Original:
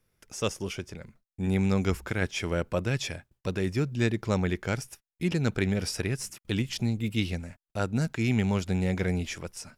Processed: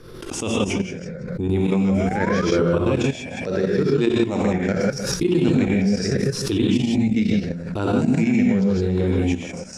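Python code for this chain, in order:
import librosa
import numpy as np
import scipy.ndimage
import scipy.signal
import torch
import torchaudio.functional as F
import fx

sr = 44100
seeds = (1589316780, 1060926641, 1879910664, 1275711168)

y = fx.spec_ripple(x, sr, per_octave=0.6, drift_hz=-0.8, depth_db=9)
y = fx.low_shelf(y, sr, hz=180.0, db=-9.5, at=(3.11, 4.66))
y = fx.rev_gated(y, sr, seeds[0], gate_ms=190, shape='rising', drr_db=-3.0)
y = fx.spec_paint(y, sr, seeds[1], shape='rise', start_s=1.89, length_s=0.57, low_hz=530.0, high_hz=1300.0, level_db=-30.0)
y = fx.level_steps(y, sr, step_db=12)
y = scipy.signal.sosfilt(scipy.signal.butter(2, 7300.0, 'lowpass', fs=sr, output='sos'), y)
y = fx.peak_eq(y, sr, hz=320.0, db=9.0, octaves=2.1)
y = fx.hum_notches(y, sr, base_hz=60, count=3)
y = y + 10.0 ** (-21.0 / 20.0) * np.pad(y, (int(155 * sr / 1000.0), 0))[:len(y)]
y = fx.pre_swell(y, sr, db_per_s=42.0)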